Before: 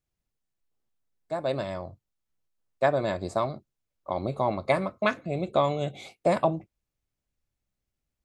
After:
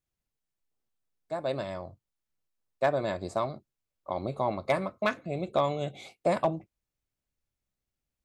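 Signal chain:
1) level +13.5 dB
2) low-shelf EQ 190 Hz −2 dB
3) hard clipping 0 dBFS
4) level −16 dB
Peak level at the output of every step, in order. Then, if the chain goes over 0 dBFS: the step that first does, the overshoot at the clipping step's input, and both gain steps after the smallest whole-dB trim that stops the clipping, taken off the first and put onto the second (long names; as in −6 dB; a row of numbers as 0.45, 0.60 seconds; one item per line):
+4.0, +3.5, 0.0, −16.0 dBFS
step 1, 3.5 dB
step 1 +9.5 dB, step 4 −12 dB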